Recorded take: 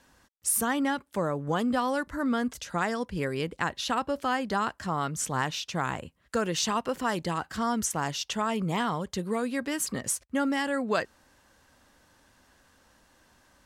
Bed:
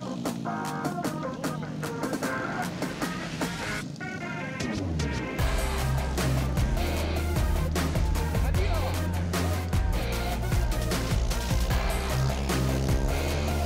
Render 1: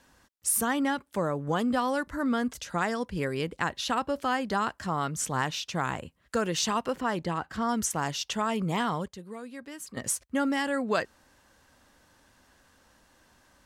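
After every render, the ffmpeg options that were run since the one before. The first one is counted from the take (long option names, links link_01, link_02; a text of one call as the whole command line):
ffmpeg -i in.wav -filter_complex "[0:a]asettb=1/sr,asplit=3[link_01][link_02][link_03];[link_01]atrim=end=6.934[link_04];[link_02]atrim=start=6.93:end=7.69,asetpts=PTS-STARTPTS,afade=type=in:duration=0.004:curve=qsin,afade=type=out:start_time=0.756:duration=0.004:curve=qsin,highshelf=frequency=4200:gain=-10[link_05];[link_03]atrim=start=7.686[link_06];[link_04][link_05]acrossfade=duration=0.004:curve1=hsin:curve2=qsin[link_07];[link_07][link_06]acrossfade=duration=0.004:curve1=qsin:curve2=hsin,asplit=3[link_08][link_09][link_10];[link_08]atrim=end=9.082[link_11];[link_09]atrim=start=9.078:end=9.972,asetpts=PTS-STARTPTS,volume=-11.5dB[link_12];[link_10]atrim=start=9.968[link_13];[link_11][link_12]acrossfade=duration=0.004:curve1=hsin:curve2=hsin[link_14];[link_14][link_13]acrossfade=duration=0.004:curve1=hsin:curve2=hsin" out.wav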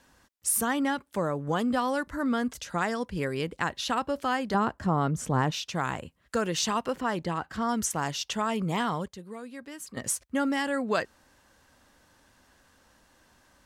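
ffmpeg -i in.wav -filter_complex "[0:a]asettb=1/sr,asplit=3[link_01][link_02][link_03];[link_01]atrim=end=4.544[link_04];[link_02]atrim=start=4.54:end=5.52,asetpts=PTS-STARTPTS,afade=type=in:duration=0.004:curve=qsin,afade=type=out:start_time=0.976:duration=0.004:curve=qsin,tiltshelf=frequency=1200:gain=7.5[link_05];[link_03]atrim=start=5.516[link_06];[link_04][link_05]acrossfade=duration=0.004:curve1=hsin:curve2=qsin[link_07];[link_07][link_06]acrossfade=duration=0.004:curve1=qsin:curve2=hsin" out.wav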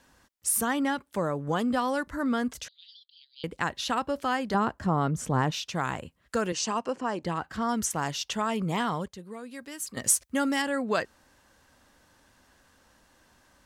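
ffmpeg -i in.wav -filter_complex "[0:a]asettb=1/sr,asplit=3[link_01][link_02][link_03];[link_01]atrim=end=2.684[link_04];[link_02]atrim=start=2.68:end=3.44,asetpts=PTS-STARTPTS,afade=type=in:duration=0.004:curve=qsin,afade=type=out:start_time=0.756:duration=0.004:curve=qsin,asuperpass=centerf=3800:order=8:qfactor=2.5[link_05];[link_03]atrim=start=3.436[link_06];[link_04][link_05]acrossfade=duration=0.004:curve1=hsin:curve2=qsin[link_07];[link_07][link_06]acrossfade=duration=0.004:curve1=qsin:curve2=hsin,asettb=1/sr,asplit=3[link_08][link_09][link_10];[link_08]atrim=end=6.524[link_11];[link_09]atrim=start=6.52:end=7.23,asetpts=PTS-STARTPTS,afade=type=in:duration=0.004:curve=qsin,afade=type=out:start_time=0.706:duration=0.004:curve=qsin,highpass=150,equalizer=frequency=160:width_type=q:width=4:gain=-8,equalizer=frequency=1400:width_type=q:width=4:gain=-4,equalizer=frequency=2000:width_type=q:width=4:gain=-6,equalizer=frequency=3600:width_type=q:width=4:gain=-10,lowpass=frequency=8600:width=0.5412,lowpass=frequency=8600:width=1.3066[link_12];[link_10]atrim=start=7.226[link_13];[link_11][link_12]acrossfade=duration=0.004:curve1=hsin:curve2=qsin[link_14];[link_14][link_13]acrossfade=duration=0.004:curve1=qsin:curve2=hsin,asettb=1/sr,asplit=3[link_15][link_16][link_17];[link_15]atrim=end=9.514[link_18];[link_16]atrim=start=9.51:end=10.62,asetpts=PTS-STARTPTS,afade=type=in:duration=0.004:curve=qsin,afade=type=out:start_time=1.106:duration=0.004:curve=qsin,highshelf=frequency=3400:gain=8[link_19];[link_17]atrim=start=10.616[link_20];[link_18][link_19]acrossfade=duration=0.004:curve1=hsin:curve2=qsin[link_21];[link_21][link_20]acrossfade=duration=0.004:curve1=qsin:curve2=hsin" out.wav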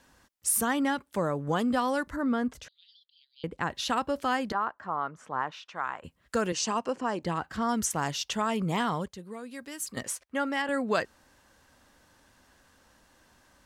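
ffmpeg -i in.wav -filter_complex "[0:a]asettb=1/sr,asplit=3[link_01][link_02][link_03];[link_01]atrim=end=2.164[link_04];[link_02]atrim=start=2.16:end=3.7,asetpts=PTS-STARTPTS,afade=type=in:duration=0.004:curve=qsin,afade=type=out:start_time=1.536:duration=0.004:curve=qsin,highshelf=frequency=2600:gain=-10.5[link_05];[link_03]atrim=start=3.696[link_06];[link_04][link_05]acrossfade=duration=0.004:curve1=hsin:curve2=qsin[link_07];[link_07][link_06]acrossfade=duration=0.004:curve1=qsin:curve2=hsin,asettb=1/sr,asplit=3[link_08][link_09][link_10];[link_08]atrim=end=4.524[link_11];[link_09]atrim=start=4.52:end=6.04,asetpts=PTS-STARTPTS,afade=type=in:duration=0.004:curve=qsin,afade=type=out:start_time=1.516:duration=0.004:curve=qsin,bandpass=frequency=1200:width_type=q:width=1.4[link_12];[link_10]atrim=start=6.036[link_13];[link_11][link_12]acrossfade=duration=0.004:curve1=hsin:curve2=qsin[link_14];[link_14][link_13]acrossfade=duration=0.004:curve1=qsin:curve2=hsin,asettb=1/sr,asplit=3[link_15][link_16][link_17];[link_15]atrim=end=10.034[link_18];[link_16]atrim=start=10.03:end=10.69,asetpts=PTS-STARTPTS,afade=type=in:duration=0.004:curve=qsin,afade=type=out:start_time=0.656:duration=0.004:curve=qsin,bass=frequency=250:gain=-14,treble=frequency=4000:gain=-13[link_19];[link_17]atrim=start=10.686[link_20];[link_18][link_19]acrossfade=duration=0.004:curve1=hsin:curve2=qsin[link_21];[link_21][link_20]acrossfade=duration=0.004:curve1=qsin:curve2=hsin" out.wav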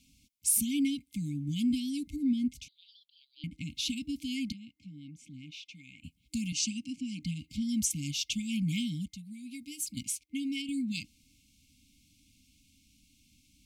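ffmpeg -i in.wav -af "afftfilt=real='re*(1-between(b*sr/4096,310,2100))':imag='im*(1-between(b*sr/4096,310,2100))':win_size=4096:overlap=0.75" out.wav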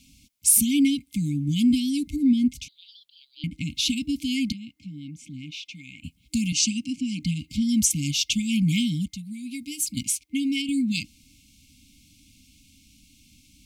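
ffmpeg -i in.wav -af "volume=9dB" out.wav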